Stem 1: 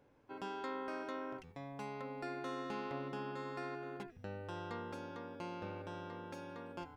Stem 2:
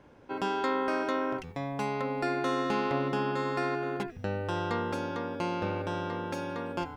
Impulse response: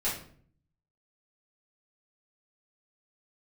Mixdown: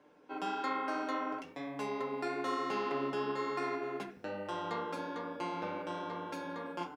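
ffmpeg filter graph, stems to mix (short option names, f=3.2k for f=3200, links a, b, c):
-filter_complex "[0:a]volume=-10dB[a];[1:a]highpass=f=200:w=0.5412,highpass=f=200:w=1.3066,aecho=1:1:6.6:0.51,volume=-4dB,asplit=2[b][c];[c]volume=-15.5dB[d];[2:a]atrim=start_sample=2205[e];[d][e]afir=irnorm=-1:irlink=0[f];[a][b][f]amix=inputs=3:normalize=0,flanger=delay=7.4:depth=9.6:regen=-43:speed=1.1:shape=triangular"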